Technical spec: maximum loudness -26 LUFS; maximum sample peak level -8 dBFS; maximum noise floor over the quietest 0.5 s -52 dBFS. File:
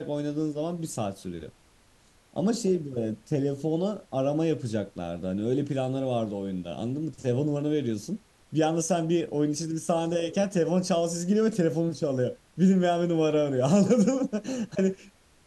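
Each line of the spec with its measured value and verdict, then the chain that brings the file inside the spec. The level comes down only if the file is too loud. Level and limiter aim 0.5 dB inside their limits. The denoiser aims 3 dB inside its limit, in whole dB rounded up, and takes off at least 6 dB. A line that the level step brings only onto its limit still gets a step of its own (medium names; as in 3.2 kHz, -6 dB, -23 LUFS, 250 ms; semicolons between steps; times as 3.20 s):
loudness -27.5 LUFS: pass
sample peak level -10.5 dBFS: pass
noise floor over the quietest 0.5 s -60 dBFS: pass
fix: none needed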